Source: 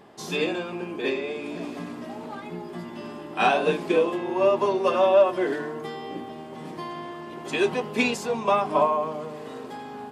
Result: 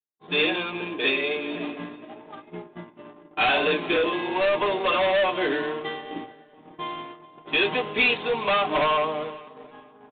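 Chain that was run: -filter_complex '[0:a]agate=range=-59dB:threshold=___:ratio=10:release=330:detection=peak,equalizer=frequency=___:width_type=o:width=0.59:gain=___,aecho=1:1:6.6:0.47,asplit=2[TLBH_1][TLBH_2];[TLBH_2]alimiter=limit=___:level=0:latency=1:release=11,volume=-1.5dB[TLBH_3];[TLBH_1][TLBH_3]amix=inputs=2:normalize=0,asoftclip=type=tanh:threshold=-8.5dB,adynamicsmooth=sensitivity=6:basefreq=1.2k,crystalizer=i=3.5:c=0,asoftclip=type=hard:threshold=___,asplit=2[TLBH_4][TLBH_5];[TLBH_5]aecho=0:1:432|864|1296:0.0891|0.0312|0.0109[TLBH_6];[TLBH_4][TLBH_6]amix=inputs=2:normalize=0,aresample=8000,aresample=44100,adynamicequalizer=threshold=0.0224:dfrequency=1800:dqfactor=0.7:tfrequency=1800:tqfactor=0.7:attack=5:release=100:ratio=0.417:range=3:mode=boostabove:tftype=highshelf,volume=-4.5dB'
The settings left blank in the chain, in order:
-33dB, 150, -6.5, -16dB, -15dB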